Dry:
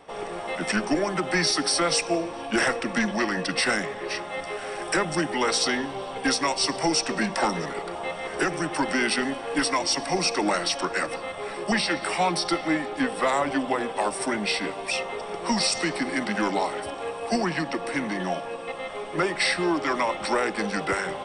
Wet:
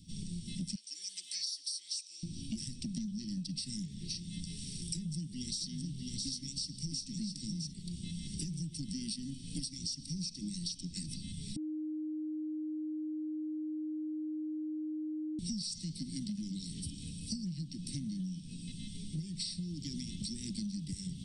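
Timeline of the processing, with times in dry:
0:00.75–0:02.23: high-pass filter 750 Hz 24 dB per octave
0:04.70–0:07.72: single-tap delay 662 ms −6 dB
0:11.56–0:15.39: beep over 309 Hz −21 dBFS
whole clip: elliptic band-stop filter 180–4,300 Hz, stop band 60 dB; low shelf with overshoot 360 Hz +6.5 dB, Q 1.5; downward compressor 12 to 1, threshold −39 dBFS; level +3 dB

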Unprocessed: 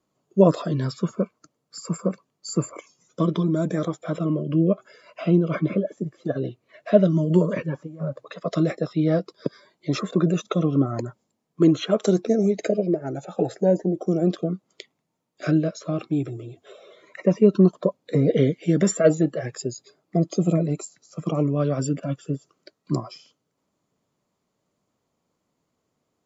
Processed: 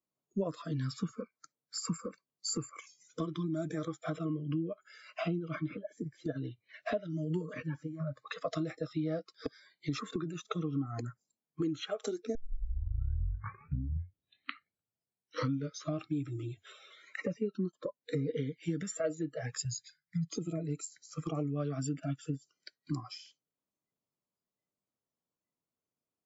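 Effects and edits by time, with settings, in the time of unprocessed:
0:12.35: tape start 3.64 s
0:19.65–0:20.30: elliptic band-stop filter 170–1,400 Hz
whole clip: downward compressor 6 to 1, threshold −31 dBFS; noise reduction from a noise print of the clip's start 20 dB

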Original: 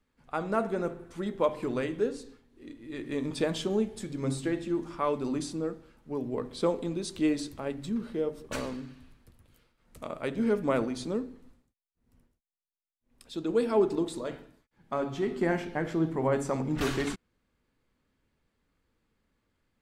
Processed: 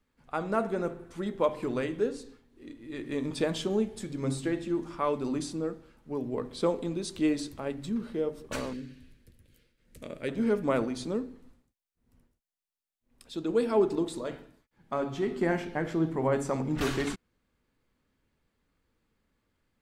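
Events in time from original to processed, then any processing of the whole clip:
0:08.73–0:10.29: flat-topped bell 940 Hz −12 dB 1.2 octaves

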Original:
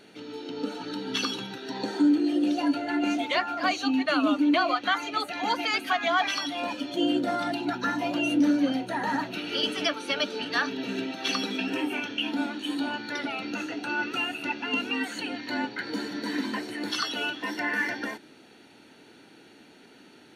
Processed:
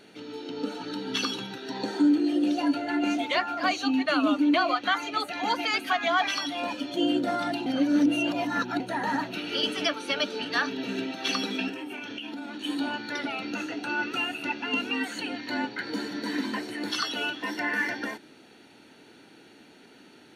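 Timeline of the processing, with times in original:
0:07.66–0:08.80: reverse
0:11.69–0:12.64: downward compressor 10 to 1, threshold −33 dBFS

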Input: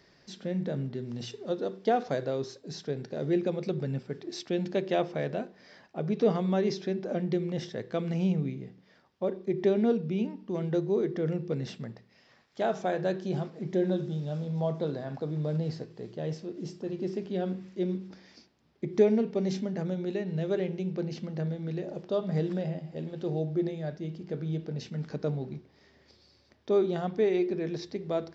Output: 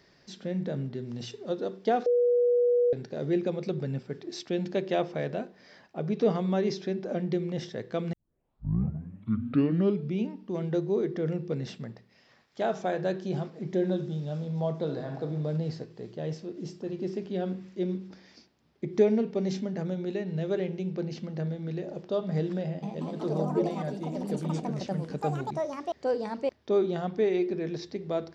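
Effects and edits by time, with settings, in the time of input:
0:02.06–0:02.93: beep over 485 Hz −20 dBFS
0:08.13: tape start 2.05 s
0:14.83–0:15.23: thrown reverb, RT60 0.89 s, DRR 5 dB
0:22.64–0:27.26: delay with pitch and tempo change per echo 185 ms, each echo +4 semitones, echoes 3

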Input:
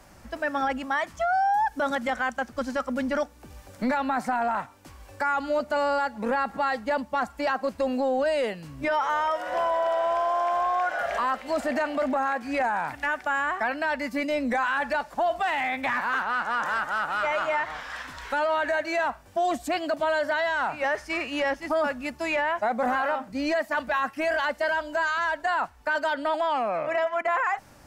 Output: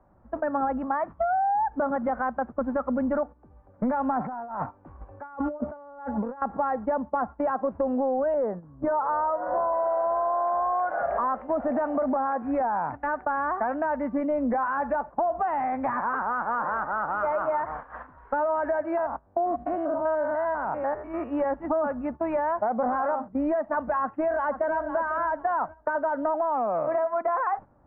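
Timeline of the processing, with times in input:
0:04.19–0:06.42: compressor whose output falls as the input rises −35 dBFS
0:08.34–0:09.73: low-pass filter 1,700 Hz 24 dB per octave
0:18.97–0:21.31: spectrum averaged block by block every 100 ms
0:24.01–0:24.86: delay throw 500 ms, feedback 25%, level −10.5 dB
whole clip: noise gate −36 dBFS, range −12 dB; low-pass filter 1,200 Hz 24 dB per octave; downward compressor, threshold −27 dBFS; level +4.5 dB

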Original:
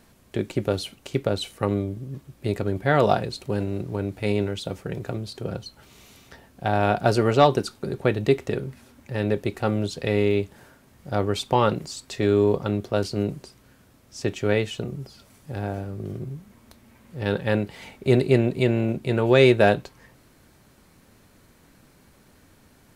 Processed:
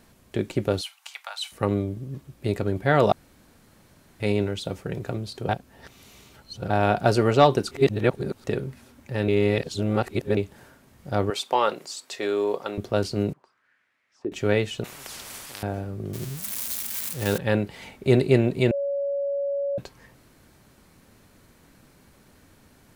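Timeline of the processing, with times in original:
0:00.81–0:01.52: Butterworth high-pass 800 Hz 48 dB per octave
0:03.12–0:04.20: fill with room tone
0:05.49–0:06.70: reverse
0:07.71–0:08.44: reverse
0:09.28–0:10.37: reverse
0:11.30–0:12.78: high-pass filter 470 Hz
0:13.33–0:14.32: envelope filter 330–2,300 Hz, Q 3.5, down, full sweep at −29.5 dBFS
0:14.84–0:15.63: every bin compressed towards the loudest bin 10 to 1
0:16.13–0:17.38: spike at every zero crossing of −20.5 dBFS
0:18.71–0:19.78: beep over 562 Hz −23.5 dBFS

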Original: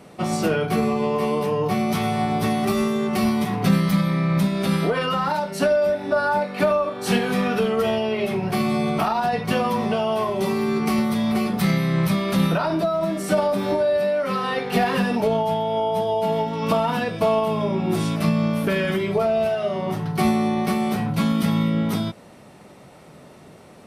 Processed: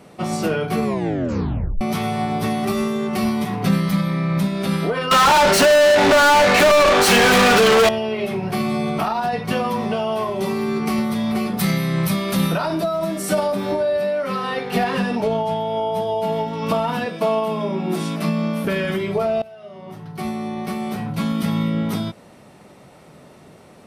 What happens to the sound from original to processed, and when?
0:00.84: tape stop 0.97 s
0:05.11–0:07.89: mid-hump overdrive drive 38 dB, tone 5,600 Hz, clips at −7 dBFS
0:11.57–0:13.52: high-shelf EQ 5,600 Hz +9 dB
0:14.84–0:15.58: low-pass filter 10,000 Hz
0:17.06–0:18.65: Butterworth high-pass 160 Hz
0:19.42–0:21.67: fade in, from −21 dB

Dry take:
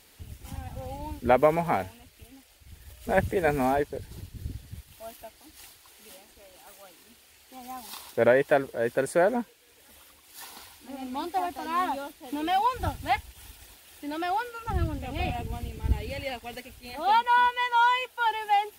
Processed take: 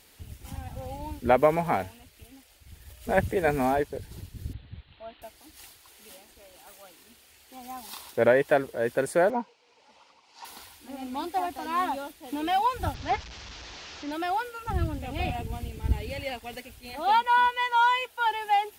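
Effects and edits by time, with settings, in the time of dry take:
0:04.53–0:05.22: Chebyshev low-pass filter 4,100 Hz, order 6
0:09.30–0:10.45: loudspeaker in its box 210–5,400 Hz, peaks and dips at 330 Hz −10 dB, 910 Hz +9 dB, 1,700 Hz −10 dB, 3,500 Hz −7 dB
0:12.94–0:14.12: linear delta modulator 32 kbit/s, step −36.5 dBFS

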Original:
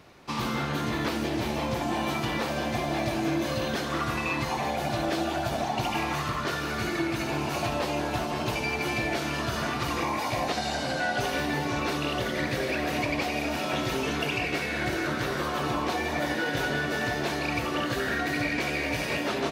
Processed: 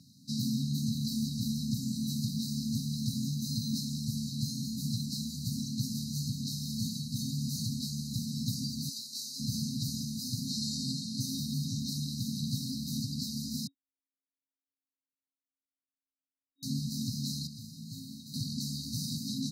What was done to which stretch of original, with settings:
0:08.89–0:09.40: high-pass filter 750 Hz
0:13.67–0:16.63: beep over 1,090 Hz −14 dBFS
0:17.47–0:18.34: tuned comb filter 54 Hz, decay 0.98 s, mix 80%
whole clip: high-pass filter 110 Hz 24 dB per octave; brick-wall band-stop 270–3,800 Hz; level +2 dB

